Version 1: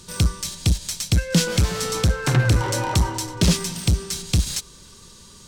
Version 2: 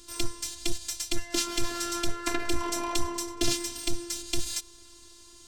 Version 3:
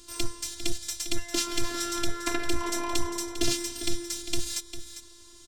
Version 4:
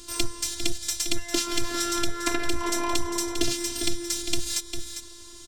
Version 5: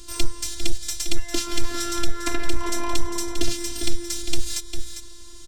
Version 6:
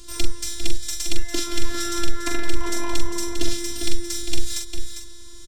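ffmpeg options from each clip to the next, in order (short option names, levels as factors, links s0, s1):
-af "afftfilt=real='hypot(re,im)*cos(PI*b)':imag='0':win_size=512:overlap=0.75,volume=0.794"
-af "aecho=1:1:400:0.282"
-af "acompressor=threshold=0.0501:ratio=5,volume=2.11"
-af "lowshelf=f=66:g=11.5,volume=0.891"
-filter_complex "[0:a]asplit=2[s0][s1];[s1]adelay=43,volume=0.501[s2];[s0][s2]amix=inputs=2:normalize=0,volume=0.891"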